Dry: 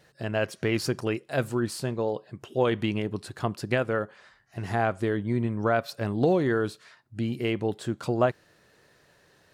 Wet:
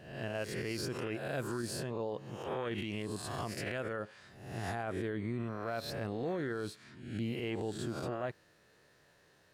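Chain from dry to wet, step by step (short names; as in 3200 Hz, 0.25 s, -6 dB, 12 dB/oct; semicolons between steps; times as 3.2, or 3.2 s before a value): spectral swells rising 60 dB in 0.76 s; 2.78–4.84 high shelf 3900 Hz +7 dB; limiter -20.5 dBFS, peak gain reduction 12 dB; gain -7.5 dB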